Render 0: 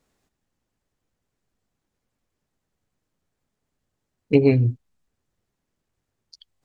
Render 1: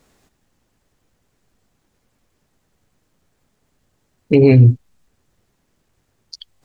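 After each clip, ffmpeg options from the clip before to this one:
-af "alimiter=level_in=5.01:limit=0.891:release=50:level=0:latency=1,volume=0.891"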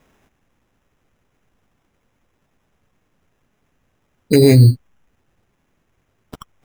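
-af "acrusher=samples=10:mix=1:aa=0.000001"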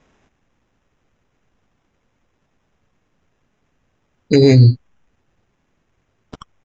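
-af "aresample=16000,aresample=44100"

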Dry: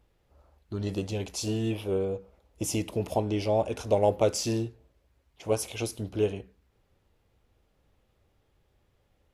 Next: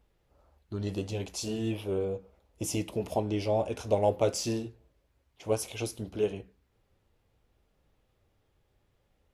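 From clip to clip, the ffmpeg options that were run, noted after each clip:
-af "flanger=delay=4.3:depth=5.7:regen=-71:speed=0.65:shape=triangular,volume=1.26"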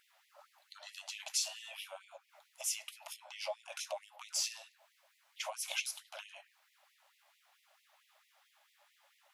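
-af "alimiter=limit=0.0794:level=0:latency=1:release=347,acompressor=threshold=0.00891:ratio=10,afftfilt=real='re*gte(b*sr/1024,540*pow(1900/540,0.5+0.5*sin(2*PI*4.5*pts/sr)))':imag='im*gte(b*sr/1024,540*pow(1900/540,0.5+0.5*sin(2*PI*4.5*pts/sr)))':win_size=1024:overlap=0.75,volume=3.76"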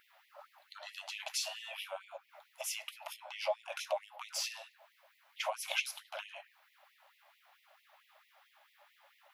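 -af "equalizer=f=7600:t=o:w=1.6:g=-12.5,volume=2.11"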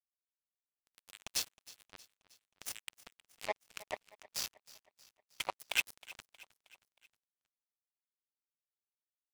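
-af "highpass=760,acrusher=bits=4:mix=0:aa=0.5,aecho=1:1:315|630|945|1260:0.106|0.0572|0.0309|0.0167,volume=1.33"

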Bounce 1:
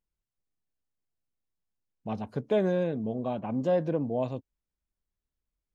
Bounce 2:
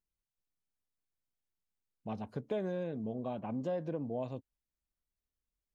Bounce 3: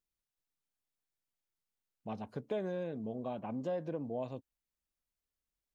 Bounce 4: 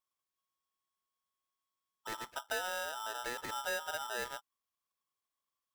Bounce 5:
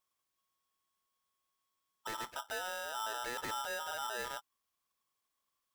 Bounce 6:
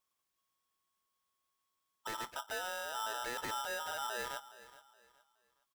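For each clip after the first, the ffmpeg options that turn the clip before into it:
-af "acompressor=threshold=0.0355:ratio=2.5,volume=0.562"
-af "lowshelf=f=200:g=-4.5"
-af "aeval=exprs='val(0)*sgn(sin(2*PI*1100*n/s))':c=same,volume=0.891"
-af "alimiter=level_in=5.01:limit=0.0631:level=0:latency=1:release=10,volume=0.2,volume=1.78"
-af "aecho=1:1:419|838|1257:0.141|0.0438|0.0136"

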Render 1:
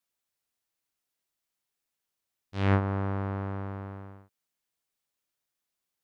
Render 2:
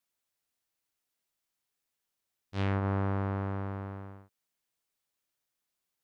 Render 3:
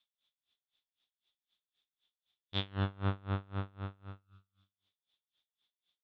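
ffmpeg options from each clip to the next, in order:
-af "alimiter=limit=0.0944:level=0:latency=1:release=95"
-filter_complex "[0:a]lowpass=f=3500:t=q:w=13,asplit=2[s0][s1];[s1]aecho=0:1:113|226|339|452|565|678:0.251|0.136|0.0732|0.0396|0.0214|0.0115[s2];[s0][s2]amix=inputs=2:normalize=0,aeval=exprs='val(0)*pow(10,-29*(0.5-0.5*cos(2*PI*3.9*n/s))/20)':c=same"

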